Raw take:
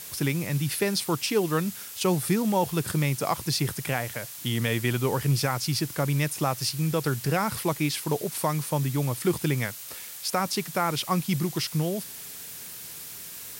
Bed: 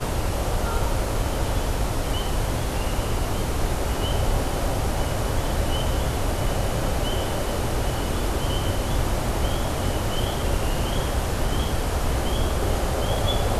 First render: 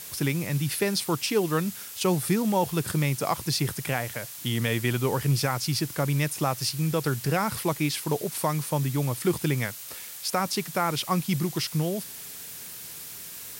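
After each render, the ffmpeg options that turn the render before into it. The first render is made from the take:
-af anull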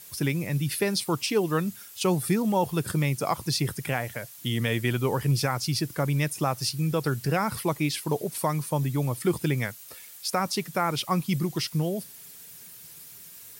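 -af "afftdn=nr=9:nf=-41"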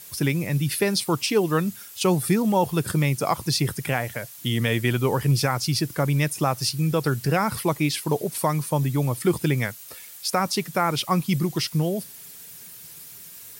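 -af "volume=3.5dB"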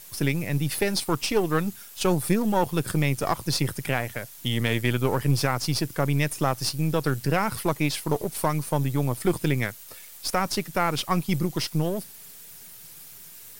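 -af "aeval=exprs='if(lt(val(0),0),0.447*val(0),val(0))':c=same"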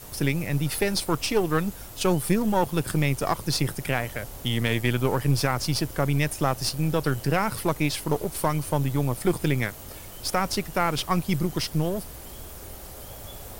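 -filter_complex "[1:a]volume=-19.5dB[a];[0:a][a]amix=inputs=2:normalize=0"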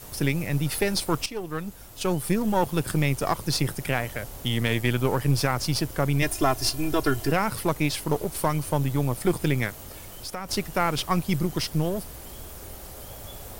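-filter_complex "[0:a]asettb=1/sr,asplit=3[a][b][c];[a]atrim=end=6.224[d];[b]atrim=start=6.22:end=7.32,asetpts=PTS-STARTPTS,afade=t=in:d=0.004:c=qsin,afade=t=out:st=1.096:d=0.004:c=qsin,aecho=1:1:2.9:0.9,atrim=end_sample=48510[e];[c]atrim=start=7.316[f];[d][e]acrossfade=d=0.004:c1=hsin:c2=qsin[g];[g][f]acrossfade=d=0.004:c1=qsin:c2=hsin,asettb=1/sr,asplit=3[h][i][j];[h]atrim=end=9.864[k];[i]atrim=start=9.86:end=10.49,asetpts=PTS-STARTPTS,afade=t=in:d=0.004:c=qsin,afade=t=out:st=0.626:d=0.004:c=qsin,acompressor=threshold=-36dB:ratio=2:attack=3.2:release=140:knee=1:detection=peak[l];[j]atrim=start=10.486[m];[k][l]acrossfade=d=0.004:c1=hsin:c2=qsin[n];[n][m]acrossfade=d=0.004:c1=qsin:c2=hsin,asplit=2[o][p];[o]atrim=end=1.26,asetpts=PTS-STARTPTS,afade=t=out:st=1.256:d=0.004:c=hsin:silence=0.251189[q];[p]atrim=start=1.26,asetpts=PTS-STARTPTS,afade=t=in:d=1.37:silence=0.251189[r];[q][r]concat=n=2:v=0:a=1"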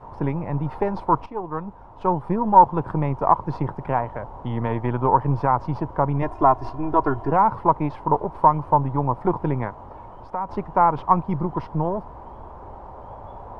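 -af "lowpass=f=950:t=q:w=6.7"

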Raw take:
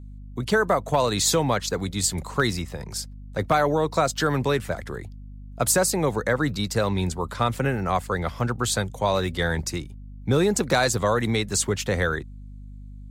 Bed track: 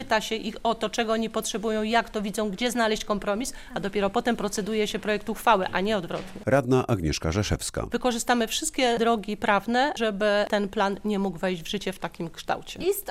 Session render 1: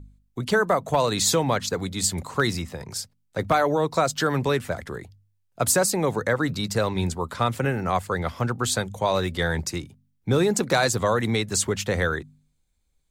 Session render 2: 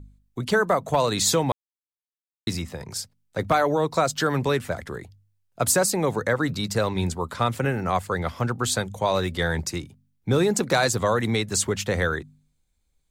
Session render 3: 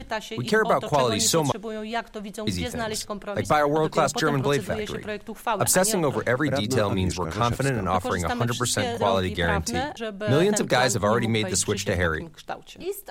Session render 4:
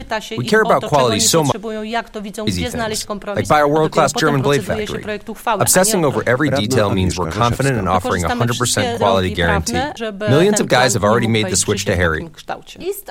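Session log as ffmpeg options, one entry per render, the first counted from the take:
-af "bandreject=f=50:t=h:w=4,bandreject=f=100:t=h:w=4,bandreject=f=150:t=h:w=4,bandreject=f=200:t=h:w=4,bandreject=f=250:t=h:w=4"
-filter_complex "[0:a]asplit=3[a][b][c];[a]atrim=end=1.52,asetpts=PTS-STARTPTS,afade=t=out:st=1.516:d=0.004:c=hsin[d];[b]atrim=start=1.52:end=2.47,asetpts=PTS-STARTPTS,volume=0[e];[c]atrim=start=2.47,asetpts=PTS-STARTPTS,afade=t=in:d=0.004:c=hsin[f];[d][e][f]concat=n=3:v=0:a=1"
-filter_complex "[1:a]volume=-6dB[a];[0:a][a]amix=inputs=2:normalize=0"
-af "volume=8dB,alimiter=limit=-1dB:level=0:latency=1"

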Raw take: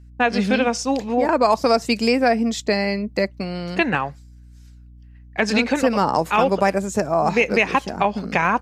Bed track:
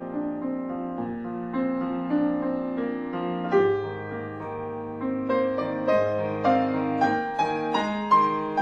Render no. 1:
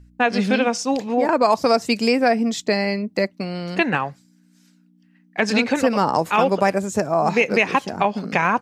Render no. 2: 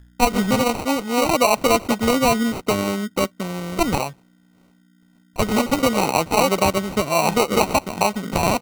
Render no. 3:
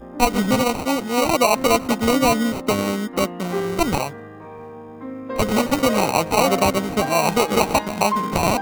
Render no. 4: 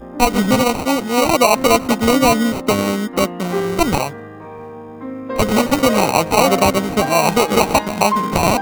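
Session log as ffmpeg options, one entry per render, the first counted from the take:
-af "bandreject=f=60:t=h:w=4,bandreject=f=120:t=h:w=4"
-af "acrusher=samples=26:mix=1:aa=0.000001"
-filter_complex "[1:a]volume=-4.5dB[a];[0:a][a]amix=inputs=2:normalize=0"
-af "volume=4dB,alimiter=limit=-1dB:level=0:latency=1"

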